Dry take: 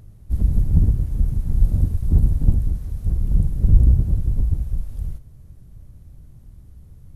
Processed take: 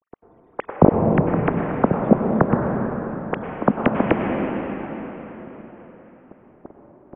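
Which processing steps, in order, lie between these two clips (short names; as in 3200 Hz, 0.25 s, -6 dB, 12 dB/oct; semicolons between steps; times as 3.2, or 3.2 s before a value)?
sine-wave speech; treble ducked by the level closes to 590 Hz, closed at -10 dBFS; dynamic EQ 550 Hz, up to +4 dB, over -27 dBFS, Q 1.5; in parallel at +2 dB: compressor 4:1, threshold -20 dBFS, peak gain reduction 17.5 dB; on the sum: low-pass opened by the level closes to 460 Hz, open at -7.5 dBFS; plate-style reverb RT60 4.4 s, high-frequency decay 0.8×, pre-delay 85 ms, DRR 1 dB; gain -9.5 dB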